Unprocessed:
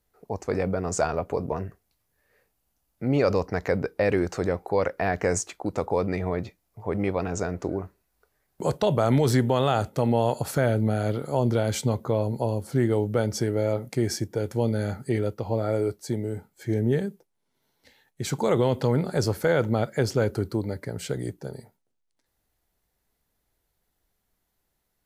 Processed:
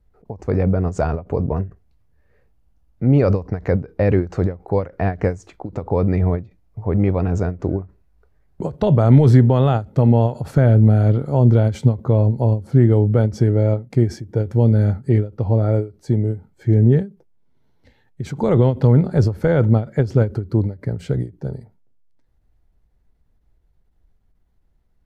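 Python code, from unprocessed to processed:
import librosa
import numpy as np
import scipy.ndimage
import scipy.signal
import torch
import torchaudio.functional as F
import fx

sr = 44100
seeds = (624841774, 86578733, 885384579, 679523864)

y = fx.riaa(x, sr, side='playback')
y = fx.end_taper(y, sr, db_per_s=210.0)
y = y * librosa.db_to_amplitude(1.5)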